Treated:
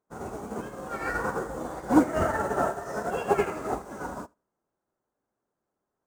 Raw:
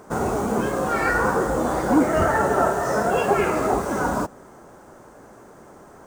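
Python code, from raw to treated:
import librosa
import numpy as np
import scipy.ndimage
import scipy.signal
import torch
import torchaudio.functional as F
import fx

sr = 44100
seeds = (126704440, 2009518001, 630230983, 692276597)

p1 = fx.vibrato(x, sr, rate_hz=4.9, depth_cents=5.1)
p2 = p1 + fx.echo_feedback(p1, sr, ms=80, feedback_pct=33, wet_db=-11.0, dry=0)
y = fx.upward_expand(p2, sr, threshold_db=-39.0, expansion=2.5)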